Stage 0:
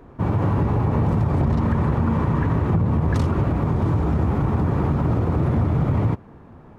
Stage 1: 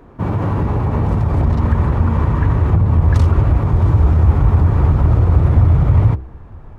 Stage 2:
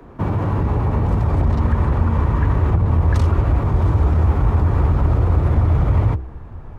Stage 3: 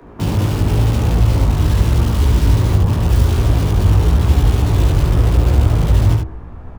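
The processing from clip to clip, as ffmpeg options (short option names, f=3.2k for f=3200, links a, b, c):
-af "bandreject=f=64.23:t=h:w=4,bandreject=f=128.46:t=h:w=4,bandreject=f=192.69:t=h:w=4,bandreject=f=256.92:t=h:w=4,bandreject=f=321.15:t=h:w=4,bandreject=f=385.38:t=h:w=4,bandreject=f=449.61:t=h:w=4,bandreject=f=513.84:t=h:w=4,bandreject=f=578.07:t=h:w=4,bandreject=f=642.3:t=h:w=4,bandreject=f=706.53:t=h:w=4,bandreject=f=770.76:t=h:w=4,bandreject=f=834.99:t=h:w=4,asubboost=boost=8:cutoff=73,volume=3dB"
-filter_complex "[0:a]acrossover=split=89|200[a][b][c];[a]acompressor=threshold=-16dB:ratio=4[d];[b]acompressor=threshold=-27dB:ratio=4[e];[c]acompressor=threshold=-25dB:ratio=4[f];[d][e][f]amix=inputs=3:normalize=0,volume=1.5dB"
-filter_complex "[0:a]acrossover=split=130|660[a][b][c];[c]aeval=exprs='(mod(28.2*val(0)+1,2)-1)/28.2':c=same[d];[a][b][d]amix=inputs=3:normalize=0,flanger=delay=16.5:depth=3:speed=0.91,aecho=1:1:72:0.562,volume=5dB"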